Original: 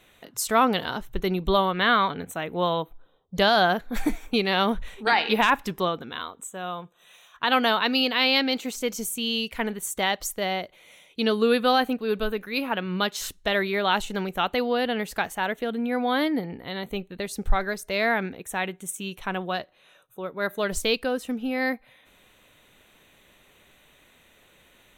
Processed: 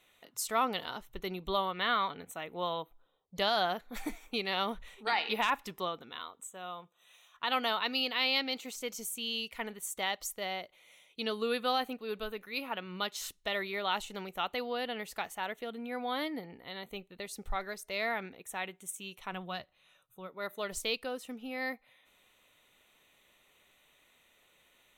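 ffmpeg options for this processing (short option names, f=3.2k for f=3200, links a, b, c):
-filter_complex "[0:a]asplit=3[a][b][c];[a]afade=t=out:st=19.32:d=0.02[d];[b]asubboost=boost=5.5:cutoff=170,afade=t=in:st=19.32:d=0.02,afade=t=out:st=20.27:d=0.02[e];[c]afade=t=in:st=20.27:d=0.02[f];[d][e][f]amix=inputs=3:normalize=0,lowshelf=f=420:g=-9,bandreject=f=1.6k:w=8.6,volume=-7.5dB"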